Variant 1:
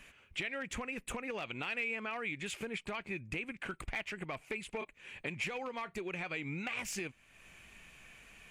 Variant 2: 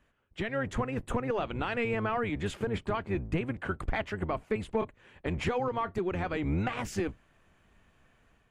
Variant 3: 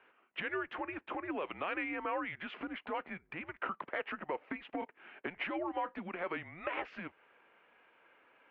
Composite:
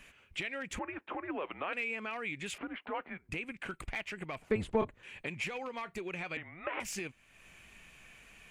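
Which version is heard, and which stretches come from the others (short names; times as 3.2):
1
0.79–1.73 from 3
2.58–3.29 from 3
4.42–5.03 from 2
6.37–6.8 from 3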